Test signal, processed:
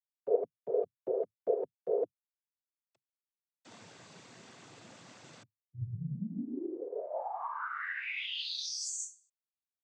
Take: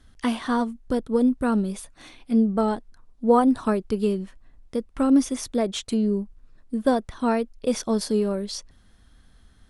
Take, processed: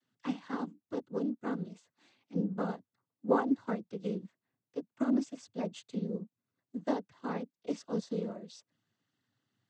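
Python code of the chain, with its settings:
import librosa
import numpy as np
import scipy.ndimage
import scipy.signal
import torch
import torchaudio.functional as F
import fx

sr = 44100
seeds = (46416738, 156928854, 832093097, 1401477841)

y = fx.noise_vocoder(x, sr, seeds[0], bands=16)
y = fx.upward_expand(y, sr, threshold_db=-33.0, expansion=1.5)
y = F.gain(torch.from_numpy(y), -9.0).numpy()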